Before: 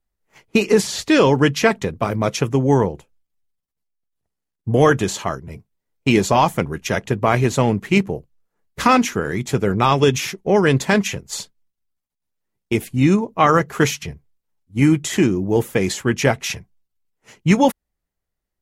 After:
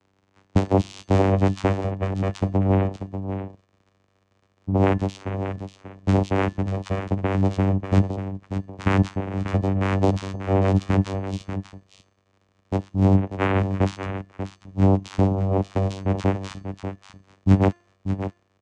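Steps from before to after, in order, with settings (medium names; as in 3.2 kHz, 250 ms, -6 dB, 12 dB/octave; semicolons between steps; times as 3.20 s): crackle 440 per s -35 dBFS; vocoder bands 4, saw 96.5 Hz; de-hum 348.5 Hz, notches 28; on a send: delay 589 ms -9.5 dB; on the sum: trim -3.5 dB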